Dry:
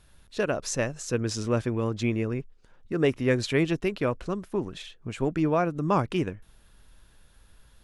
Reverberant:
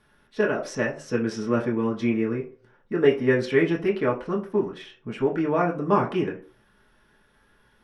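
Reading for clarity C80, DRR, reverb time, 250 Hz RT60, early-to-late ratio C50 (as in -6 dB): 17.5 dB, -3.0 dB, 0.45 s, 0.45 s, 12.5 dB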